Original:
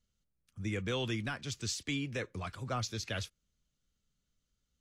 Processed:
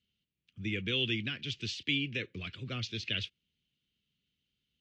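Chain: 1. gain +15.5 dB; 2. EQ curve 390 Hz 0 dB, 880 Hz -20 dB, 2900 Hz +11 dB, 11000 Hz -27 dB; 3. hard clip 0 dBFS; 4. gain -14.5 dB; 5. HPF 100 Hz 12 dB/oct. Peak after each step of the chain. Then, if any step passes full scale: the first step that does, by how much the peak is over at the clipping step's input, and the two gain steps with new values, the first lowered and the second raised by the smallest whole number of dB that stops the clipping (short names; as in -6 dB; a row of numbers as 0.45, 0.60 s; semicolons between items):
-9.0, -3.0, -3.0, -17.5, -17.0 dBFS; no overload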